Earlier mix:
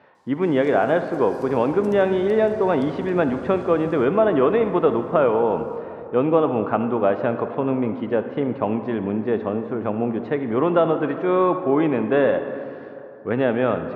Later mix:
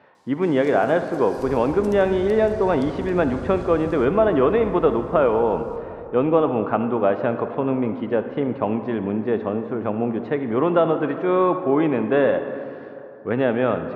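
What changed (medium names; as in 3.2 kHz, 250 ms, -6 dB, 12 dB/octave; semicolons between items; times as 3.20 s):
first sound +5.0 dB; second sound: remove high-pass 140 Hz 12 dB/octave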